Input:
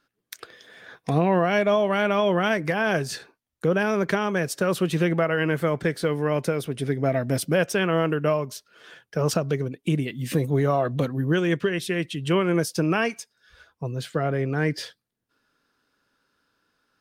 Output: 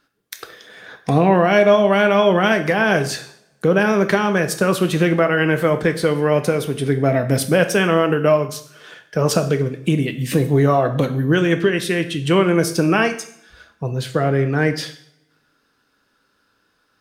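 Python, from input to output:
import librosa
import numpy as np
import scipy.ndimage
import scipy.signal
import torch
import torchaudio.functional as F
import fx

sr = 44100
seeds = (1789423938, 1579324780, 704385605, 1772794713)

y = fx.rev_double_slope(x, sr, seeds[0], early_s=0.58, late_s=1.6, knee_db=-24, drr_db=7.5)
y = y * 10.0 ** (6.0 / 20.0)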